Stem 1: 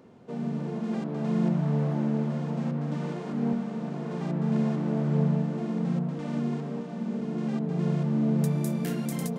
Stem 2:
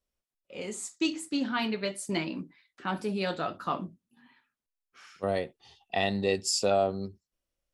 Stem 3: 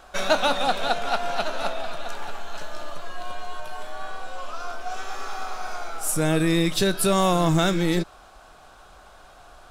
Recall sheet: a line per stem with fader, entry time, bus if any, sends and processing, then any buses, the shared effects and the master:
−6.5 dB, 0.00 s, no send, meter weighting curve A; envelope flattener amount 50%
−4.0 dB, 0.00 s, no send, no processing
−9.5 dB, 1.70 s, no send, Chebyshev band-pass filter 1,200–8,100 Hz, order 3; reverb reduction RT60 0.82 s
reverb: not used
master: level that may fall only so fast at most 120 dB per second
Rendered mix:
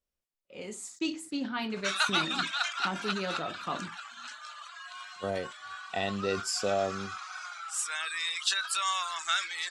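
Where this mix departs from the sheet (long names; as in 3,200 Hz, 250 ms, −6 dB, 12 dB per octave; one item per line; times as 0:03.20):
stem 1: muted
stem 3 −9.5 dB → −1.0 dB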